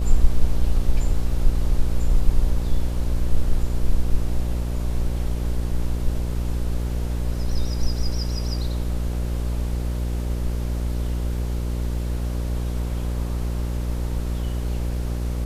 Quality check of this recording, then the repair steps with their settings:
mains buzz 60 Hz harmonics 10 −25 dBFS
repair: hum removal 60 Hz, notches 10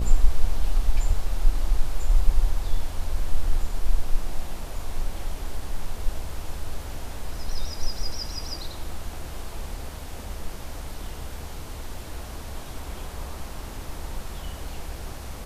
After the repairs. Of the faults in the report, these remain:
none of them is left

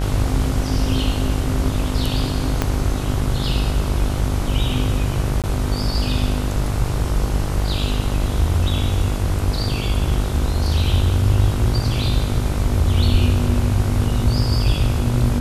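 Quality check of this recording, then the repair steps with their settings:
mains buzz 50 Hz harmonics 31 −23 dBFS
0:02.62: click −5 dBFS
0:05.42–0:05.44: drop-out 17 ms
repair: click removal
hum removal 50 Hz, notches 31
repair the gap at 0:05.42, 17 ms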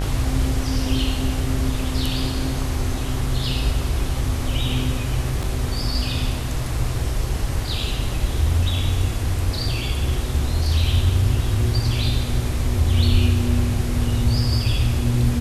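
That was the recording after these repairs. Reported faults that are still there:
0:02.62: click

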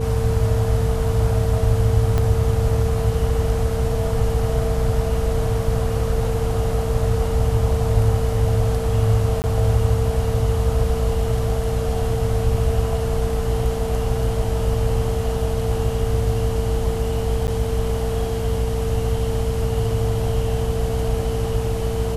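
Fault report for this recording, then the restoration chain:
mains hum 60 Hz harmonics 4 −25 dBFS
whistle 450 Hz −25 dBFS
0:02.18: click −10 dBFS
0:09.42–0:09.44: drop-out 19 ms
0:17.47–0:17.48: drop-out 9.7 ms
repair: click removal
hum removal 60 Hz, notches 4
notch filter 450 Hz, Q 30
repair the gap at 0:09.42, 19 ms
repair the gap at 0:17.47, 9.7 ms

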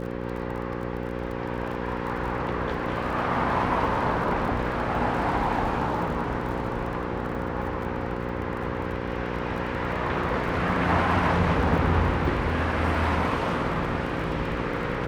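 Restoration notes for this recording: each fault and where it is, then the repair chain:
mains buzz 60 Hz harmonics 9 −32 dBFS
surface crackle 31 per second −35 dBFS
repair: click removal
hum removal 60 Hz, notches 9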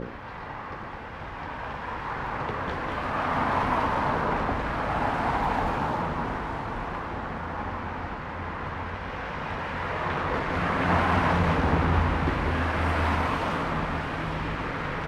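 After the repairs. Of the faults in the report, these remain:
none of them is left

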